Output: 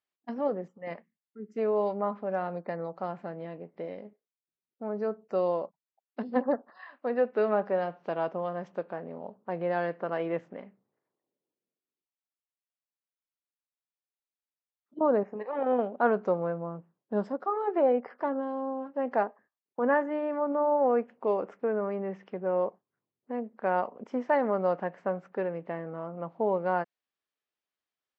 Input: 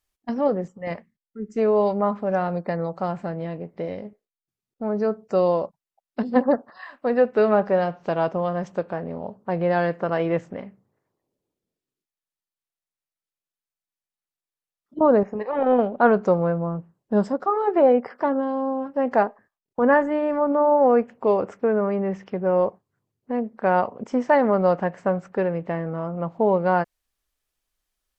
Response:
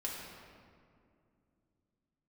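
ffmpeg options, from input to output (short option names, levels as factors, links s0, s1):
-af "highpass=210,lowpass=3800,volume=0.422"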